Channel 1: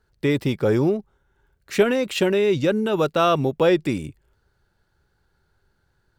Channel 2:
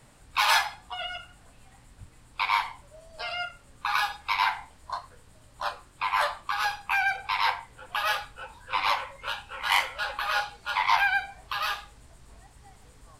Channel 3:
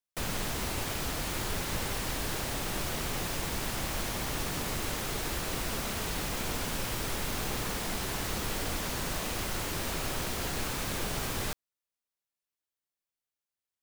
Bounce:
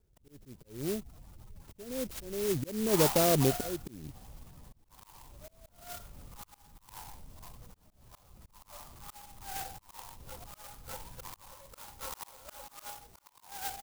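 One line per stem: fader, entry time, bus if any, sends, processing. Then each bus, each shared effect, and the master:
−4.5 dB, 0.00 s, no send, flat-topped bell 1,800 Hz −10.5 dB 2.4 octaves; volume swells 640 ms; bass and treble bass +2 dB, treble −3 dB
+0.5 dB, 2.50 s, no send, flat-topped bell 2,200 Hz −11.5 dB 1.1 octaves; volume swells 525 ms
−12.5 dB, 0.00 s, no send, low-pass filter 2,100 Hz 6 dB per octave; gate on every frequency bin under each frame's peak −15 dB strong; parametric band 380 Hz −14.5 dB 1.7 octaves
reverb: not used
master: volume swells 314 ms; converter with an unsteady clock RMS 0.15 ms

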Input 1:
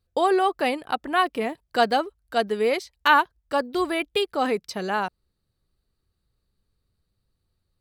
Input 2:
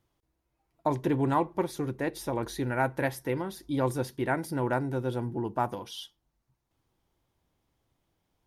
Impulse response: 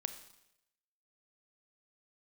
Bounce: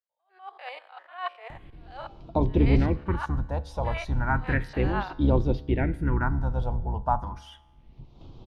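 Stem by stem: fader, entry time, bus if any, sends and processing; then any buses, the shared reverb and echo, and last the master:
−8.5 dB, 0.00 s, no send, spectrum averaged block by block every 100 ms; inverse Chebyshev high-pass filter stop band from 250 Hz, stop band 50 dB; level that may rise only so fast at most 140 dB per second
−3.0 dB, 1.50 s, no send, sub-octave generator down 2 octaves, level +2 dB; upward compression, threshold −30 dBFS; all-pass phaser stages 4, 0.33 Hz, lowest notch 310–1,800 Hz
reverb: not used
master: low-pass filter 3,200 Hz 12 dB per octave; automatic gain control gain up to 11 dB; tuned comb filter 71 Hz, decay 1.3 s, harmonics all, mix 40%

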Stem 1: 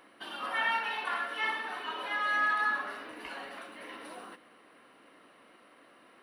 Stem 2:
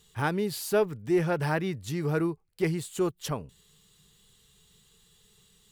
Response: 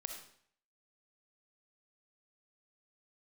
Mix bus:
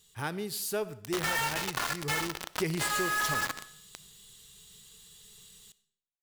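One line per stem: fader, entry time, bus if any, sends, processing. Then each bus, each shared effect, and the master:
+2.5 dB, 0.70 s, send −10 dB, bit reduction 5 bits
0:02.19 −10 dB → 0:02.57 −1.5 dB, 0.00 s, send −7 dB, high-shelf EQ 2,700 Hz +10 dB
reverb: on, RT60 0.60 s, pre-delay 20 ms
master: downward compressor 12 to 1, threshold −26 dBFS, peak gain reduction 9.5 dB

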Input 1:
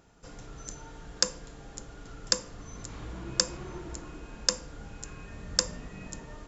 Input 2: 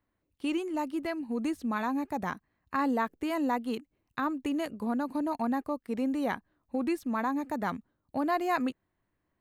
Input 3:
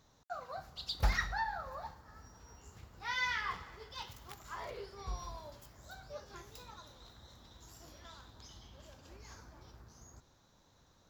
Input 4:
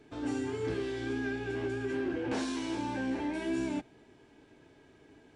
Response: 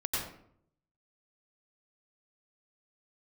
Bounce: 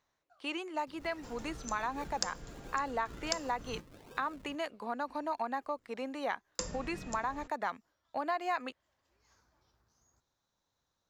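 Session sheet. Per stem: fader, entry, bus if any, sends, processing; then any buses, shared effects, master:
−3.0 dB, 1.00 s, muted 0:03.80–0:06.59, no send, no processing
+2.0 dB, 0.00 s, no send, three-way crossover with the lows and the highs turned down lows −18 dB, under 510 Hz, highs −16 dB, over 7,000 Hz
−13.0 dB, 0.00 s, no send, low-shelf EQ 500 Hz −7 dB; automatic ducking −13 dB, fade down 0.30 s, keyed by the second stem
−7.5 dB, 0.75 s, no send, inverse Chebyshev high-pass filter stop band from 550 Hz, stop band 40 dB; sample-and-hold swept by an LFO 42×, swing 100% 1.4 Hz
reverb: not used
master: downward compressor 4 to 1, threshold −30 dBFS, peak gain reduction 8.5 dB

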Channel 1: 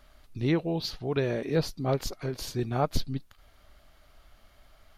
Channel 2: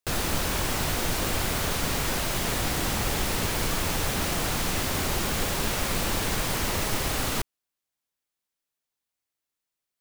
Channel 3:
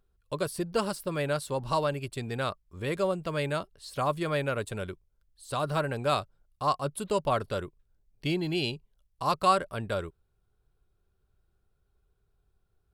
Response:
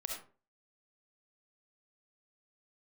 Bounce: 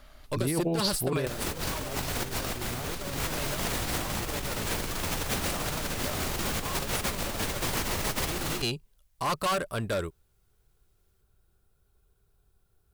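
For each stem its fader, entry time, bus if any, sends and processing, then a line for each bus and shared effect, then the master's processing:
0.0 dB, 0.00 s, no send, brickwall limiter −21 dBFS, peak gain reduction 8 dB
+1.0 dB, 1.20 s, no send, no processing
−1.0 dB, 0.00 s, no send, high-shelf EQ 6,500 Hz +11 dB; gain into a clipping stage and back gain 28.5 dB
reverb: not used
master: compressor whose output falls as the input rises −29 dBFS, ratio −0.5

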